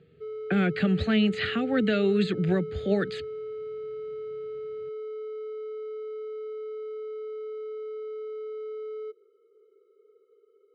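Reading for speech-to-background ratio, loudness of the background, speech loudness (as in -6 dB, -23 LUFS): 11.0 dB, -37.0 LUFS, -26.0 LUFS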